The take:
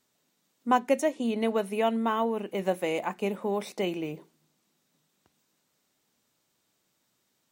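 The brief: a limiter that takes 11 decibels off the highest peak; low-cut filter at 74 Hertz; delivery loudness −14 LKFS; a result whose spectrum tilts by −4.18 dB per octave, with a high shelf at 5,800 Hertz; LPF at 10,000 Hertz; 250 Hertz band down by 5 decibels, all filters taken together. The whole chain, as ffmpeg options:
ffmpeg -i in.wav -af "highpass=74,lowpass=10000,equalizer=frequency=250:width_type=o:gain=-6,highshelf=frequency=5800:gain=5,volume=19.5dB,alimiter=limit=-2.5dB:level=0:latency=1" out.wav

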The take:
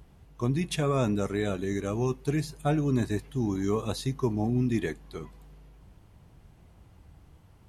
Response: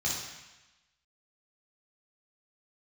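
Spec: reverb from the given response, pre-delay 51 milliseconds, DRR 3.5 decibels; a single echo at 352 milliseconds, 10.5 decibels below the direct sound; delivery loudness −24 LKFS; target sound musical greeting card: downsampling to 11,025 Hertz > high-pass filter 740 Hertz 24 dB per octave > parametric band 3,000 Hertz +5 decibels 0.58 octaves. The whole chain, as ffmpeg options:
-filter_complex "[0:a]aecho=1:1:352:0.299,asplit=2[link_01][link_02];[1:a]atrim=start_sample=2205,adelay=51[link_03];[link_02][link_03]afir=irnorm=-1:irlink=0,volume=-10.5dB[link_04];[link_01][link_04]amix=inputs=2:normalize=0,aresample=11025,aresample=44100,highpass=frequency=740:width=0.5412,highpass=frequency=740:width=1.3066,equalizer=frequency=3000:width_type=o:width=0.58:gain=5,volume=13.5dB"

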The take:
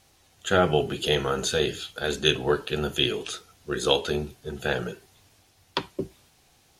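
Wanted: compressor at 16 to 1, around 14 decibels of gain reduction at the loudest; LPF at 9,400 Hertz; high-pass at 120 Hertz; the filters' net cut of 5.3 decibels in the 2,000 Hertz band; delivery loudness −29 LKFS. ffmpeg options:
ffmpeg -i in.wav -af "highpass=120,lowpass=9400,equalizer=frequency=2000:width_type=o:gain=-8,acompressor=threshold=-31dB:ratio=16,volume=8dB" out.wav

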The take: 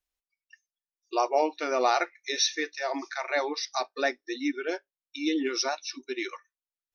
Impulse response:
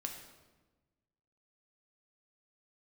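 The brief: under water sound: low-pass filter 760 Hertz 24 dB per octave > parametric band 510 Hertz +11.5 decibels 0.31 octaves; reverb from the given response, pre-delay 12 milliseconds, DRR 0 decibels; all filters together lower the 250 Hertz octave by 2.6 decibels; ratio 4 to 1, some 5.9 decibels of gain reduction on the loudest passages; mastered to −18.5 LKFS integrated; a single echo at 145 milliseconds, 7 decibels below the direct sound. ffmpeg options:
-filter_complex "[0:a]equalizer=frequency=250:width_type=o:gain=-4.5,acompressor=threshold=-27dB:ratio=4,aecho=1:1:145:0.447,asplit=2[link_01][link_02];[1:a]atrim=start_sample=2205,adelay=12[link_03];[link_02][link_03]afir=irnorm=-1:irlink=0,volume=1dB[link_04];[link_01][link_04]amix=inputs=2:normalize=0,lowpass=frequency=760:width=0.5412,lowpass=frequency=760:width=1.3066,equalizer=frequency=510:width_type=o:width=0.31:gain=11.5,volume=10.5dB"

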